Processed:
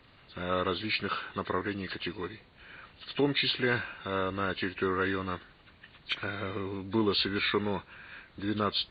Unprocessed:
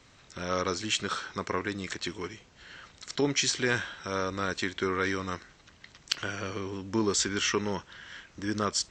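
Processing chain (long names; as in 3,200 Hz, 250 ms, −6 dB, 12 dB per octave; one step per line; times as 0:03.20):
hearing-aid frequency compression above 1,500 Hz 1.5 to 1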